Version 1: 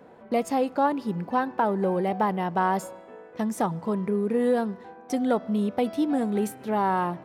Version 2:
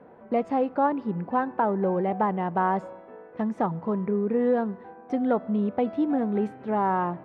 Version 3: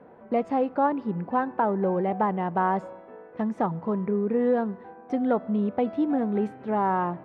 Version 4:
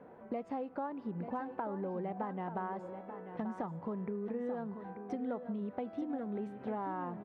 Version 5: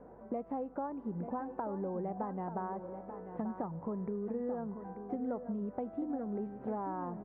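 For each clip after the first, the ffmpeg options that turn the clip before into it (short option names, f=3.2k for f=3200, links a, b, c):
-af "lowpass=1.9k"
-af anull
-af "acompressor=threshold=-32dB:ratio=6,aecho=1:1:887:0.335,volume=-4dB"
-af "lowpass=1.2k,aeval=exprs='val(0)+0.000501*(sin(2*PI*50*n/s)+sin(2*PI*2*50*n/s)/2+sin(2*PI*3*50*n/s)/3+sin(2*PI*4*50*n/s)/4+sin(2*PI*5*50*n/s)/5)':c=same,volume=1dB"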